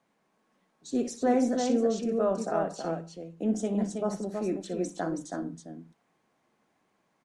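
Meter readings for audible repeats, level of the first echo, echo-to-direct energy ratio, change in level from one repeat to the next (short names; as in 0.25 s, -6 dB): 2, -12.0 dB, -4.0 dB, no steady repeat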